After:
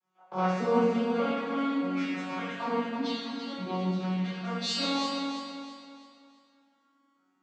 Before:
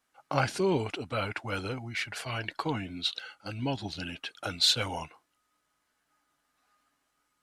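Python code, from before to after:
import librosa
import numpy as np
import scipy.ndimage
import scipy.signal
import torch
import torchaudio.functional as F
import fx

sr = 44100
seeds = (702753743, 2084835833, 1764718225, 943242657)

p1 = fx.vocoder_arp(x, sr, chord='major triad', root=54, every_ms=595)
p2 = p1 + fx.echo_feedback(p1, sr, ms=331, feedback_pct=39, wet_db=-6.5, dry=0)
p3 = fx.rev_plate(p2, sr, seeds[0], rt60_s=1.4, hf_ratio=1.0, predelay_ms=0, drr_db=-10.0)
y = F.gain(torch.from_numpy(p3), -7.0).numpy()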